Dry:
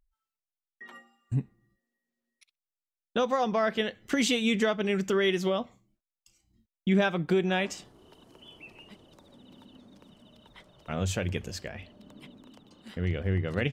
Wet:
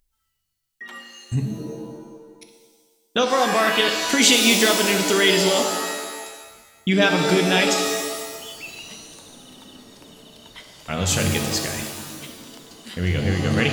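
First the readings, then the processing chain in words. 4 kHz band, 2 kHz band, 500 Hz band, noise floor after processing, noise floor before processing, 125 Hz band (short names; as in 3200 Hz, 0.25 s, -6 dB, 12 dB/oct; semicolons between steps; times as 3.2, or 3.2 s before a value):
+15.0 dB, +11.5 dB, +7.5 dB, -73 dBFS, under -85 dBFS, +6.5 dB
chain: high shelf 2200 Hz +11.5 dB; shimmer reverb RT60 1.4 s, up +7 st, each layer -2 dB, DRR 5 dB; gain +4.5 dB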